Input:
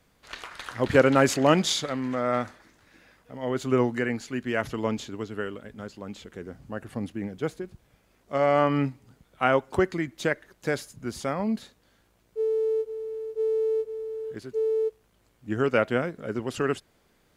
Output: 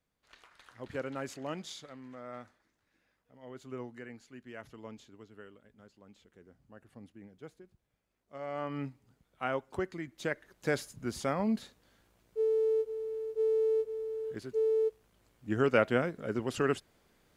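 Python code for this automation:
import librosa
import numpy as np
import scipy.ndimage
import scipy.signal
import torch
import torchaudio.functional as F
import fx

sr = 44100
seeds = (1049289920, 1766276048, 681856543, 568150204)

y = fx.gain(x, sr, db=fx.line((8.38, -19.0), (8.87, -11.5), (9.99, -11.5), (10.74, -3.0)))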